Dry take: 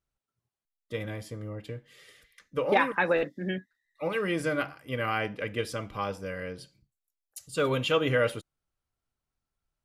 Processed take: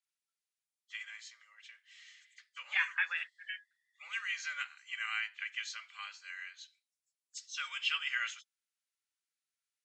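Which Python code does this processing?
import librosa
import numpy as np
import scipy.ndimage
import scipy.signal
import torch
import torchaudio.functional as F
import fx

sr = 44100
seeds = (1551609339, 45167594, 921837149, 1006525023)

y = fx.freq_compress(x, sr, knee_hz=2900.0, ratio=1.5)
y = scipy.signal.sosfilt(scipy.signal.cheby2(4, 70, 380.0, 'highpass', fs=sr, output='sos'), y)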